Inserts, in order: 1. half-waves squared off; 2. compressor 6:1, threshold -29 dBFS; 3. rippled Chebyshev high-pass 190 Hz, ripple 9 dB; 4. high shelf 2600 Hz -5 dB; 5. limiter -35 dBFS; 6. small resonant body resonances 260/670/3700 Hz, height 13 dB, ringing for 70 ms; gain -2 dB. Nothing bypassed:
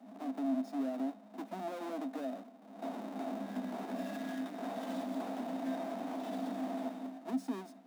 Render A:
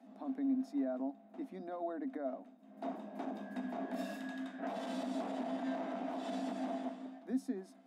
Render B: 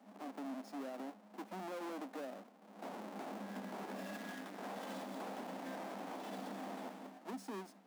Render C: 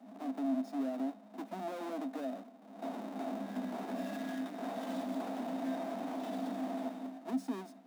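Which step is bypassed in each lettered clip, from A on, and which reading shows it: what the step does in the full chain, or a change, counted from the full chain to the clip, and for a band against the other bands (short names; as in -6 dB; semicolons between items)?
1, distortion -6 dB; 6, 250 Hz band -7.5 dB; 2, mean gain reduction 1.5 dB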